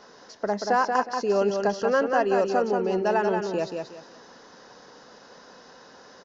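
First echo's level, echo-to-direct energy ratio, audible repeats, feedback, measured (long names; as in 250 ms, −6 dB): −5.0 dB, −4.5 dB, 3, 27%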